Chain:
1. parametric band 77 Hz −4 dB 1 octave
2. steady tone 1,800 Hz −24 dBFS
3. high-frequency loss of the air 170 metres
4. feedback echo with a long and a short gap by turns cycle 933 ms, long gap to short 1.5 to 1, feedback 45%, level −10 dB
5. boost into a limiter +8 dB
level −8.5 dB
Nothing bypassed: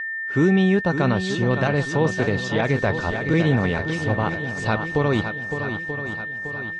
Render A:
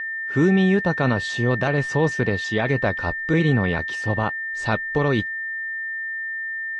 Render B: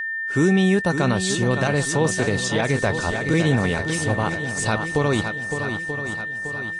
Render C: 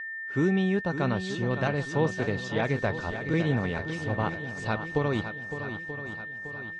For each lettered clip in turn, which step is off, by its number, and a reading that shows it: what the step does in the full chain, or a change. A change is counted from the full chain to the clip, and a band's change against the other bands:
4, 2 kHz band +2.5 dB
3, 8 kHz band +14.0 dB
5, change in crest factor +3.5 dB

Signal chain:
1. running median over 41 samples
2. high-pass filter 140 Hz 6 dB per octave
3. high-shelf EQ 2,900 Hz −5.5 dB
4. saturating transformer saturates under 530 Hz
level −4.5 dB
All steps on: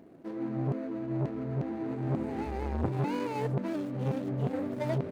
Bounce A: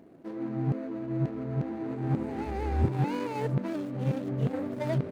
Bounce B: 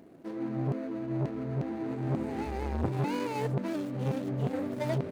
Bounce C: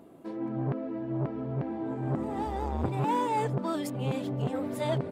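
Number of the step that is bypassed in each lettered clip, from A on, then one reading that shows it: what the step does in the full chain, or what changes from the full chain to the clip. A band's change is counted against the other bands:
4, 125 Hz band +2.0 dB
3, 4 kHz band +3.0 dB
1, 1 kHz band +5.5 dB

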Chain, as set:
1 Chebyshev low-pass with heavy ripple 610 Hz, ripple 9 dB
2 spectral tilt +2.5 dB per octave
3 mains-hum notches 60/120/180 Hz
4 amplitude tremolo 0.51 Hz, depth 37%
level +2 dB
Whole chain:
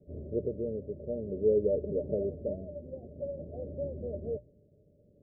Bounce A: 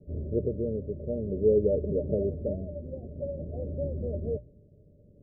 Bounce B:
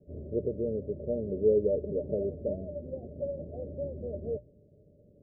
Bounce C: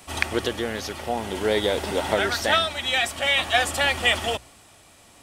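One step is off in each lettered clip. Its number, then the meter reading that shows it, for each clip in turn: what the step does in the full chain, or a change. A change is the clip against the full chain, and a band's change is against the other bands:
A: 2, change in integrated loudness +3.5 LU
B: 4, change in integrated loudness +1.5 LU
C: 1, change in crest factor +5.0 dB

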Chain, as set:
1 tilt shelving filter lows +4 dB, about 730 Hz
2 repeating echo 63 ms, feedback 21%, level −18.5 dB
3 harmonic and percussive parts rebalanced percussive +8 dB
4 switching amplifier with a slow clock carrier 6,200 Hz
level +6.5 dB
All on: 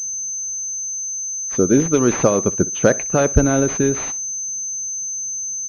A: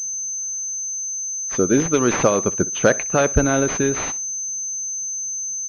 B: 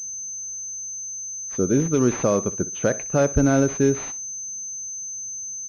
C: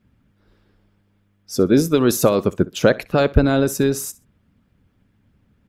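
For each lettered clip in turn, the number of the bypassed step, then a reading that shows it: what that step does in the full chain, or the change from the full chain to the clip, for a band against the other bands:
1, 125 Hz band −5.0 dB
3, 125 Hz band +2.0 dB
4, 4 kHz band +7.0 dB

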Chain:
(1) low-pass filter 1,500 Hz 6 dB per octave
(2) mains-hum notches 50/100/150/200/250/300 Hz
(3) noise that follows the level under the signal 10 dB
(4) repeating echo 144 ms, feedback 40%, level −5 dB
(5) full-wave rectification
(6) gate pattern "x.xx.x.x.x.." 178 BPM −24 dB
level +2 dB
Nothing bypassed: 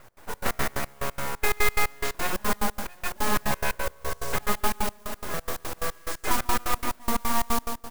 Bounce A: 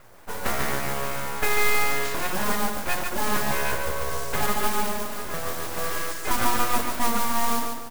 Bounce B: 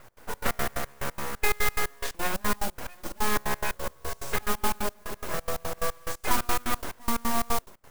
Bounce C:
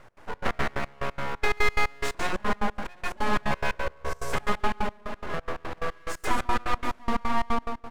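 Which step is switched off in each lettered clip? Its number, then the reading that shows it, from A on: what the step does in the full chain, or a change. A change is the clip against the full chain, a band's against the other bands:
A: 6, change in crest factor −2.0 dB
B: 4, change in integrated loudness −1.5 LU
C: 3, 8 kHz band −11.0 dB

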